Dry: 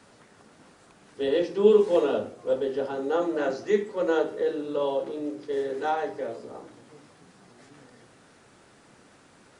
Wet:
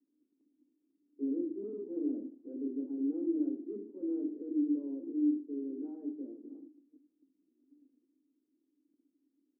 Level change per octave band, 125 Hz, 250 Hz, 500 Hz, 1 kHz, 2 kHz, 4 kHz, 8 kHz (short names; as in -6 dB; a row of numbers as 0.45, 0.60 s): under -20 dB, -0.5 dB, -19.5 dB, under -35 dB, under -40 dB, under -40 dB, n/a